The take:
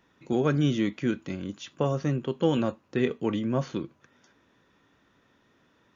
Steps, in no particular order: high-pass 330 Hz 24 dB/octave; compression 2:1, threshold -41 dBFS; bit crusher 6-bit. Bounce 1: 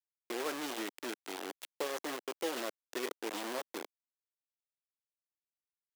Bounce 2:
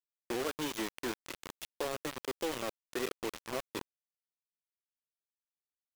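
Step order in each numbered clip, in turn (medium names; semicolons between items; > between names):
compression > bit crusher > high-pass; high-pass > compression > bit crusher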